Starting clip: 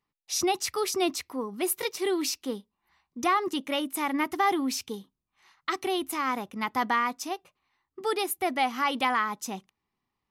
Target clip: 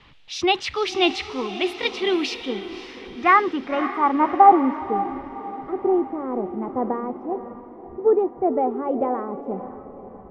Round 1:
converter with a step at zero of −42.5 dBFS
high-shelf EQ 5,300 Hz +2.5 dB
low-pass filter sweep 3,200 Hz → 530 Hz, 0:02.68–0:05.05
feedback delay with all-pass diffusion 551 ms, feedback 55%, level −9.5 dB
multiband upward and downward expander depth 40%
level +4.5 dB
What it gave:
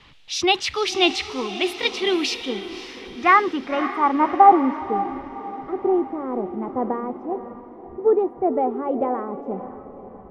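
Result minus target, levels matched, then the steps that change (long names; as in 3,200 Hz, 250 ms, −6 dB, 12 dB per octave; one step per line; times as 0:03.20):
8,000 Hz band +6.0 dB
change: high-shelf EQ 5,300 Hz −8.5 dB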